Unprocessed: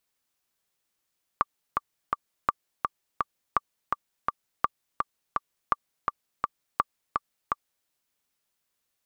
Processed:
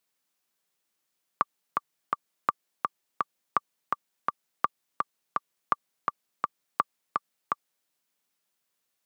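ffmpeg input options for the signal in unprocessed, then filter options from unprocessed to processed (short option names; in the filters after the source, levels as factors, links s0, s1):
-f lavfi -i "aevalsrc='pow(10,(-8-3.5*gte(mod(t,3*60/167),60/167))/20)*sin(2*PI*1170*mod(t,60/167))*exp(-6.91*mod(t,60/167)/0.03)':d=6.46:s=44100"
-af "highpass=f=130:w=0.5412,highpass=f=130:w=1.3066"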